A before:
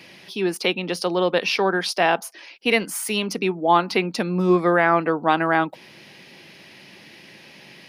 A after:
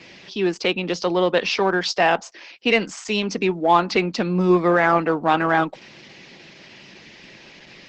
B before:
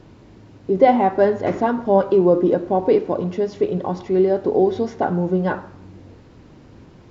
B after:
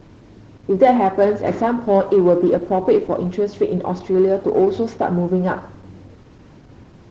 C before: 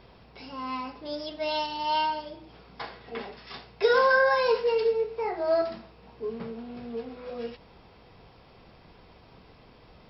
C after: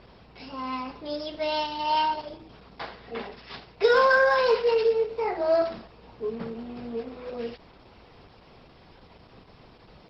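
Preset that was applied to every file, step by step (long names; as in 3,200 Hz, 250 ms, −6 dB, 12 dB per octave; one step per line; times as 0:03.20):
in parallel at −10 dB: hard clipping −18.5 dBFS
on the sum: Opus 12 kbit/s 48,000 Hz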